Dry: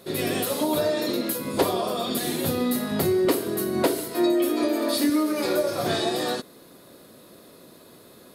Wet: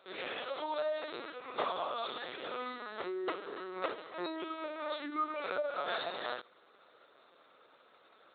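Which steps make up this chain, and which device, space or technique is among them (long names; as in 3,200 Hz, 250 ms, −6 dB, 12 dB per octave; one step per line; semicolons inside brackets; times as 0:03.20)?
talking toy (linear-prediction vocoder at 8 kHz pitch kept; high-pass filter 610 Hz 12 dB per octave; parametric band 1,300 Hz +7.5 dB 0.44 octaves)
level −7.5 dB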